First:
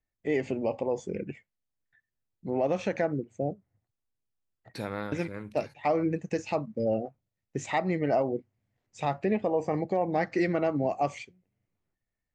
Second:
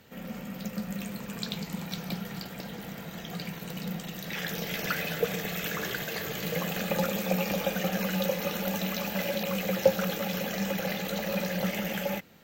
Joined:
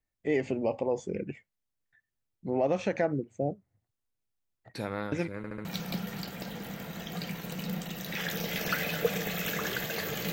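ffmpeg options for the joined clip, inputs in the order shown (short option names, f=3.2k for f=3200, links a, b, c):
-filter_complex "[0:a]apad=whole_dur=10.32,atrim=end=10.32,asplit=4[a][b][c][d];[a]atrim=end=5.442[e];[b]atrim=start=5.368:end=5.442[f];[c]atrim=start=5.368:end=5.442[g];[d]atrim=start=5.368:end=5.442[h];[1:a]atrim=start=1.828:end=6.5[i];[e][f]acrossfade=d=0.004:c1=hsin:c2=hsin[j];[j][g]acrossfade=d=0.004:c1=hsin:c2=hsin[k];[k][h]acrossfade=d=0.004:c1=hsin:c2=hsin[l];[l][i]acrossfade=d=0.004:c1=hsin:c2=hsin"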